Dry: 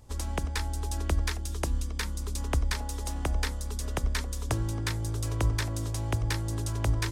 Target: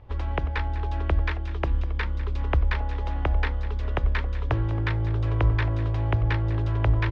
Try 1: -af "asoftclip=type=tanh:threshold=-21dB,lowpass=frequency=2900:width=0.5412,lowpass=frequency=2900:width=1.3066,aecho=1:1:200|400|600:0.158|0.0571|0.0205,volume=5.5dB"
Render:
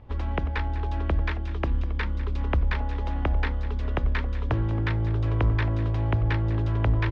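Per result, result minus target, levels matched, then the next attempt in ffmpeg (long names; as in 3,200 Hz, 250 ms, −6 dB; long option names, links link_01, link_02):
soft clipping: distortion +10 dB; 250 Hz band +3.0 dB
-af "asoftclip=type=tanh:threshold=-14.5dB,lowpass=frequency=2900:width=0.5412,lowpass=frequency=2900:width=1.3066,aecho=1:1:200|400|600:0.158|0.0571|0.0205,volume=5.5dB"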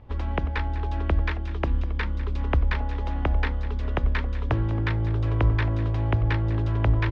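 250 Hz band +3.0 dB
-af "asoftclip=type=tanh:threshold=-14.5dB,lowpass=frequency=2900:width=0.5412,lowpass=frequency=2900:width=1.3066,equalizer=frequency=230:width=2.6:gain=-8.5,aecho=1:1:200|400|600:0.158|0.0571|0.0205,volume=5.5dB"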